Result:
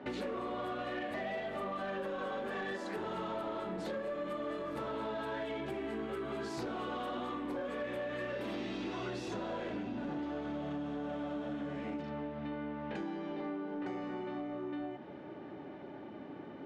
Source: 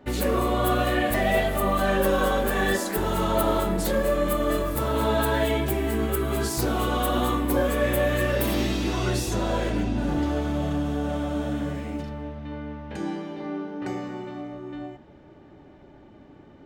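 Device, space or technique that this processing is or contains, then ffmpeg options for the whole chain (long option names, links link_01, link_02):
AM radio: -af "highpass=190,lowpass=3500,acompressor=threshold=-40dB:ratio=6,asoftclip=type=tanh:threshold=-34.5dB,volume=4dB"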